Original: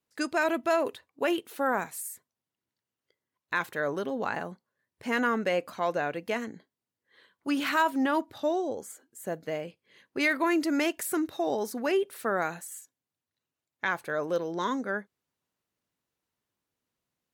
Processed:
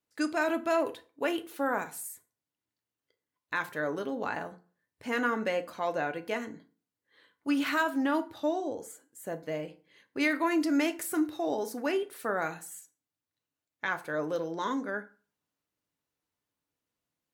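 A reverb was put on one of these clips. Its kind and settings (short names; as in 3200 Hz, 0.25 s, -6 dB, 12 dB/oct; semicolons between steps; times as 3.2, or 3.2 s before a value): FDN reverb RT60 0.39 s, low-frequency decay 1.05×, high-frequency decay 0.7×, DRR 7.5 dB; gain -3 dB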